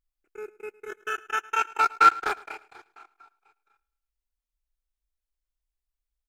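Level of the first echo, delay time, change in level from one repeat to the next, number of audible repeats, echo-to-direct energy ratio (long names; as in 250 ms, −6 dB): −21.5 dB, 108 ms, −6.0 dB, 3, −20.5 dB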